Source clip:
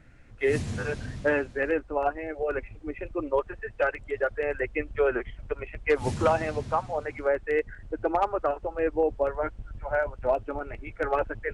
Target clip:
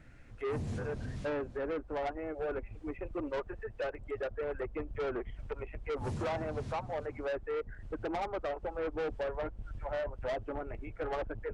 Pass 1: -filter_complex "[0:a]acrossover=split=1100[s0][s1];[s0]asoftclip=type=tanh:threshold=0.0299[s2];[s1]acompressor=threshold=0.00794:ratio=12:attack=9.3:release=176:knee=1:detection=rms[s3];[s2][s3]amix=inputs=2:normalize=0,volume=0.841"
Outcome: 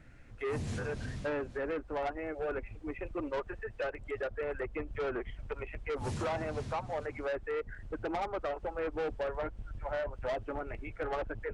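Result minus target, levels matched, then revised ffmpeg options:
compression: peak gain reduction -7.5 dB
-filter_complex "[0:a]acrossover=split=1100[s0][s1];[s0]asoftclip=type=tanh:threshold=0.0299[s2];[s1]acompressor=threshold=0.00316:ratio=12:attack=9.3:release=176:knee=1:detection=rms[s3];[s2][s3]amix=inputs=2:normalize=0,volume=0.841"

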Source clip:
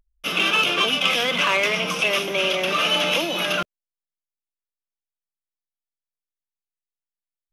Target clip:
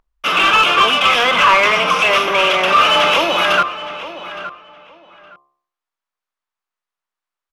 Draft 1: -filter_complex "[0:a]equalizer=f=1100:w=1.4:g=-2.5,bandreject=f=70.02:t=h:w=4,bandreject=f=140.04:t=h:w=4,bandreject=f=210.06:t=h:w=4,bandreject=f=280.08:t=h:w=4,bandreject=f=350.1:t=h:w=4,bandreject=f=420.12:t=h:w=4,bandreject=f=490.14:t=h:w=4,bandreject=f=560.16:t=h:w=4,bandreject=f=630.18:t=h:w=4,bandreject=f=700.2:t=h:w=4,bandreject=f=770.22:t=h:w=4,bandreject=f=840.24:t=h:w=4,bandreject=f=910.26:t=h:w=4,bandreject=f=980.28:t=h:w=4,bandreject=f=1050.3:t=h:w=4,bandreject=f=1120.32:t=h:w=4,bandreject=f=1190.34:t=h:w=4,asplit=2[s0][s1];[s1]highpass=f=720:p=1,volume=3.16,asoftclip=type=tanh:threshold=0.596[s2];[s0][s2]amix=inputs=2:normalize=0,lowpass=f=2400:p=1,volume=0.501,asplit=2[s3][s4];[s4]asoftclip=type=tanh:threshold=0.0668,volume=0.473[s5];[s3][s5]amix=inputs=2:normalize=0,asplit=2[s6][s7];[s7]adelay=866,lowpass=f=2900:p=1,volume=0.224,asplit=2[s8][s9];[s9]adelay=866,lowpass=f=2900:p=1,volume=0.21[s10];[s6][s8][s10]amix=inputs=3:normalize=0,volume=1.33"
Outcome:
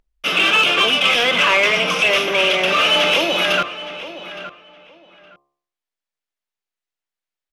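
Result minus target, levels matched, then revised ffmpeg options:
1 kHz band -6.0 dB
-filter_complex "[0:a]equalizer=f=1100:w=1.4:g=9,bandreject=f=70.02:t=h:w=4,bandreject=f=140.04:t=h:w=4,bandreject=f=210.06:t=h:w=4,bandreject=f=280.08:t=h:w=4,bandreject=f=350.1:t=h:w=4,bandreject=f=420.12:t=h:w=4,bandreject=f=490.14:t=h:w=4,bandreject=f=560.16:t=h:w=4,bandreject=f=630.18:t=h:w=4,bandreject=f=700.2:t=h:w=4,bandreject=f=770.22:t=h:w=4,bandreject=f=840.24:t=h:w=4,bandreject=f=910.26:t=h:w=4,bandreject=f=980.28:t=h:w=4,bandreject=f=1050.3:t=h:w=4,bandreject=f=1120.32:t=h:w=4,bandreject=f=1190.34:t=h:w=4,asplit=2[s0][s1];[s1]highpass=f=720:p=1,volume=3.16,asoftclip=type=tanh:threshold=0.596[s2];[s0][s2]amix=inputs=2:normalize=0,lowpass=f=2400:p=1,volume=0.501,asplit=2[s3][s4];[s4]asoftclip=type=tanh:threshold=0.0668,volume=0.473[s5];[s3][s5]amix=inputs=2:normalize=0,asplit=2[s6][s7];[s7]adelay=866,lowpass=f=2900:p=1,volume=0.224,asplit=2[s8][s9];[s9]adelay=866,lowpass=f=2900:p=1,volume=0.21[s10];[s6][s8][s10]amix=inputs=3:normalize=0,volume=1.33"

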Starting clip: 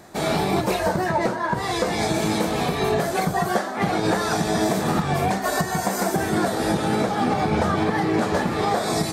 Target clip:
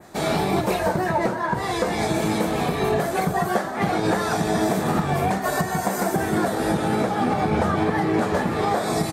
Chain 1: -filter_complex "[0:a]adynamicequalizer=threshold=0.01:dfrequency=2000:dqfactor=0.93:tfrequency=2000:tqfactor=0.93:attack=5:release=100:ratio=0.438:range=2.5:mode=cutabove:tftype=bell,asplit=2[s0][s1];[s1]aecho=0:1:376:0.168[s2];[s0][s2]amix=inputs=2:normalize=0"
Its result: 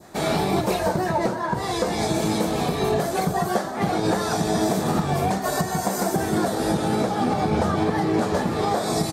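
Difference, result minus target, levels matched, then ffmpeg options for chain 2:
2 kHz band -3.0 dB
-filter_complex "[0:a]adynamicequalizer=threshold=0.01:dfrequency=5000:dqfactor=0.93:tfrequency=5000:tqfactor=0.93:attack=5:release=100:ratio=0.438:range=2.5:mode=cutabove:tftype=bell,asplit=2[s0][s1];[s1]aecho=0:1:376:0.168[s2];[s0][s2]amix=inputs=2:normalize=0"

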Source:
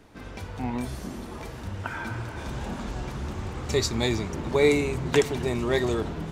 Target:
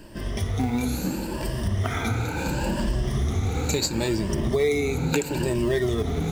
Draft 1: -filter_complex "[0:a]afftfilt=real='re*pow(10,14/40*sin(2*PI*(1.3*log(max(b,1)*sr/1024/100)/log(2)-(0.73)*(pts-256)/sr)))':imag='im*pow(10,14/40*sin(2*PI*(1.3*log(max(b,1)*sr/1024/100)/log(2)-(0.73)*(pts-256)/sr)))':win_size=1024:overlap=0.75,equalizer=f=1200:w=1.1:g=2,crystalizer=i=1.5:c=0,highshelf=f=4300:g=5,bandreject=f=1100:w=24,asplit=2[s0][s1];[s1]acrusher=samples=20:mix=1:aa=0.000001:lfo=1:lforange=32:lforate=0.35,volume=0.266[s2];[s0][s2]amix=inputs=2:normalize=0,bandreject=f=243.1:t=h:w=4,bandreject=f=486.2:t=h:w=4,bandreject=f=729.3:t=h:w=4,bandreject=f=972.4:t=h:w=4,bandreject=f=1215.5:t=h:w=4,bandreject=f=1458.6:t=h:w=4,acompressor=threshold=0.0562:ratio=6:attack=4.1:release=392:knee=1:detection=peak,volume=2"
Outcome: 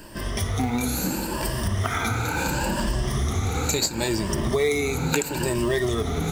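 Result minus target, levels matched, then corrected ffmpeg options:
8 kHz band +4.5 dB; 1 kHz band +3.5 dB
-filter_complex "[0:a]afftfilt=real='re*pow(10,14/40*sin(2*PI*(1.3*log(max(b,1)*sr/1024/100)/log(2)-(0.73)*(pts-256)/sr)))':imag='im*pow(10,14/40*sin(2*PI*(1.3*log(max(b,1)*sr/1024/100)/log(2)-(0.73)*(pts-256)/sr)))':win_size=1024:overlap=0.75,equalizer=f=1200:w=1.1:g=-5,crystalizer=i=1.5:c=0,highshelf=f=4300:g=-5,bandreject=f=1100:w=24,asplit=2[s0][s1];[s1]acrusher=samples=20:mix=1:aa=0.000001:lfo=1:lforange=32:lforate=0.35,volume=0.266[s2];[s0][s2]amix=inputs=2:normalize=0,bandreject=f=243.1:t=h:w=4,bandreject=f=486.2:t=h:w=4,bandreject=f=729.3:t=h:w=4,bandreject=f=972.4:t=h:w=4,bandreject=f=1215.5:t=h:w=4,bandreject=f=1458.6:t=h:w=4,acompressor=threshold=0.0562:ratio=6:attack=4.1:release=392:knee=1:detection=peak,volume=2"

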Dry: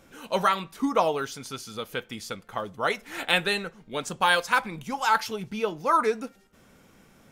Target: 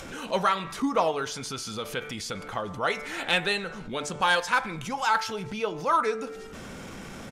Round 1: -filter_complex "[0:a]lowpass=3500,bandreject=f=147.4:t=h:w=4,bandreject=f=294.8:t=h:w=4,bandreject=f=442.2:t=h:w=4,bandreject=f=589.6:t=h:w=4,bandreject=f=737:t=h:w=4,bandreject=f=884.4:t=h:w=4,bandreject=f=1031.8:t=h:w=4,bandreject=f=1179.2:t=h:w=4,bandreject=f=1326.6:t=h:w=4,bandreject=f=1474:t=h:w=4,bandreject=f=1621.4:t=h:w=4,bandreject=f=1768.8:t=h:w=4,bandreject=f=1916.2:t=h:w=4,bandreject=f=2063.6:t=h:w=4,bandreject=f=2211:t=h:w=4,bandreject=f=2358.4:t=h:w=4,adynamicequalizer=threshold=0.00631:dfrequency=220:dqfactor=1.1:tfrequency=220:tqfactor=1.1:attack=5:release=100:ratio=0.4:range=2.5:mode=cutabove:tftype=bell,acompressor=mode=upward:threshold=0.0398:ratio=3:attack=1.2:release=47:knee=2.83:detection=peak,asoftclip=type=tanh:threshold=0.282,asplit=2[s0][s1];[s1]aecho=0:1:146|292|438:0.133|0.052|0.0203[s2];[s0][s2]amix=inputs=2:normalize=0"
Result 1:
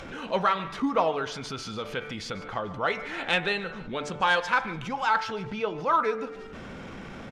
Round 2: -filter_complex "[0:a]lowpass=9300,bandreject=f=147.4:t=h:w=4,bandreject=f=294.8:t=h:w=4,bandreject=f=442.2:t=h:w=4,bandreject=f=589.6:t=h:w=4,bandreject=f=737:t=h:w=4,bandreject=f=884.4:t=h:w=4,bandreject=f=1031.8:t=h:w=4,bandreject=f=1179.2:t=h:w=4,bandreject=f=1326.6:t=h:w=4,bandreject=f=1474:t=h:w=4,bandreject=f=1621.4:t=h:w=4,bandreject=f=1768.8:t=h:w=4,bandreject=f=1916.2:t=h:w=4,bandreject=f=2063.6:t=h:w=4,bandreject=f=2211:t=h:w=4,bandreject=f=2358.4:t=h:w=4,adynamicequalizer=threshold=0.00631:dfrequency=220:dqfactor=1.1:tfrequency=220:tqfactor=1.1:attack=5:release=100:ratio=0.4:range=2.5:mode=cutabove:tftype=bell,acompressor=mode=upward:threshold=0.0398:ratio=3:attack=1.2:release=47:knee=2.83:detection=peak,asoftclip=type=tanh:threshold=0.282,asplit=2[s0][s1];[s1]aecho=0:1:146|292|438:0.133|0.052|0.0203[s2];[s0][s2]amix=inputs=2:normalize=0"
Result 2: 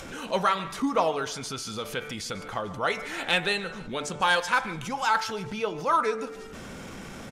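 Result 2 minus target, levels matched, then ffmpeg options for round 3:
echo-to-direct +7.5 dB
-filter_complex "[0:a]lowpass=9300,bandreject=f=147.4:t=h:w=4,bandreject=f=294.8:t=h:w=4,bandreject=f=442.2:t=h:w=4,bandreject=f=589.6:t=h:w=4,bandreject=f=737:t=h:w=4,bandreject=f=884.4:t=h:w=4,bandreject=f=1031.8:t=h:w=4,bandreject=f=1179.2:t=h:w=4,bandreject=f=1326.6:t=h:w=4,bandreject=f=1474:t=h:w=4,bandreject=f=1621.4:t=h:w=4,bandreject=f=1768.8:t=h:w=4,bandreject=f=1916.2:t=h:w=4,bandreject=f=2063.6:t=h:w=4,bandreject=f=2211:t=h:w=4,bandreject=f=2358.4:t=h:w=4,adynamicequalizer=threshold=0.00631:dfrequency=220:dqfactor=1.1:tfrequency=220:tqfactor=1.1:attack=5:release=100:ratio=0.4:range=2.5:mode=cutabove:tftype=bell,acompressor=mode=upward:threshold=0.0398:ratio=3:attack=1.2:release=47:knee=2.83:detection=peak,asoftclip=type=tanh:threshold=0.282,asplit=2[s0][s1];[s1]aecho=0:1:146|292:0.0562|0.0219[s2];[s0][s2]amix=inputs=2:normalize=0"

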